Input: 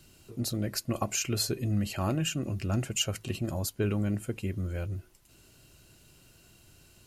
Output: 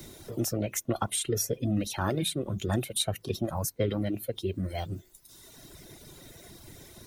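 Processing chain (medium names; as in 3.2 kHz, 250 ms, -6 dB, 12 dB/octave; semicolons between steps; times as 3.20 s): reverb removal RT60 1.5 s; formant shift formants +5 st; three bands compressed up and down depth 40%; trim +2.5 dB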